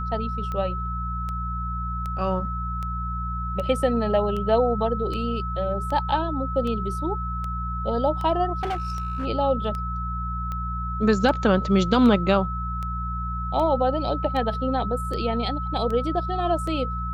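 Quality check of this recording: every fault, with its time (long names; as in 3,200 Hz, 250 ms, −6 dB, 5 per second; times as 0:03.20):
mains hum 60 Hz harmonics 3 −30 dBFS
scratch tick 78 rpm −20 dBFS
whistle 1,300 Hz −30 dBFS
0:08.60–0:09.26: clipping −23 dBFS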